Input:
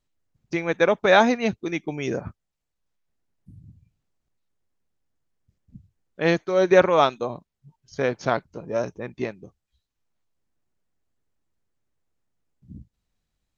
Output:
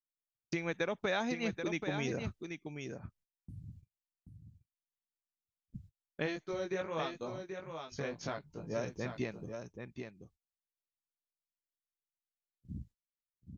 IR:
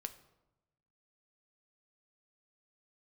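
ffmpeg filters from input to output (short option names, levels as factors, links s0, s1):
-filter_complex "[0:a]agate=range=0.0158:threshold=0.00224:ratio=16:detection=peak,equalizer=f=670:w=0.4:g=-6.5,acompressor=threshold=0.0224:ratio=4,asplit=3[s0][s1][s2];[s0]afade=t=out:st=6.25:d=0.02[s3];[s1]flanger=delay=18.5:depth=2.2:speed=2.3,afade=t=in:st=6.25:d=0.02,afade=t=out:st=8.74:d=0.02[s4];[s2]afade=t=in:st=8.74:d=0.02[s5];[s3][s4][s5]amix=inputs=3:normalize=0,aecho=1:1:782:0.447"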